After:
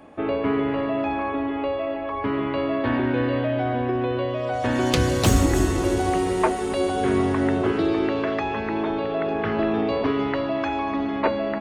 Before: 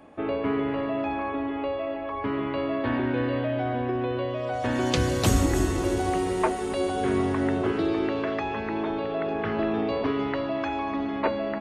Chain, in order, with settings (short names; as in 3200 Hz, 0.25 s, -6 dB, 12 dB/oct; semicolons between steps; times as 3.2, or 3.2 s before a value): tracing distortion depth 0.027 ms; gain +3.5 dB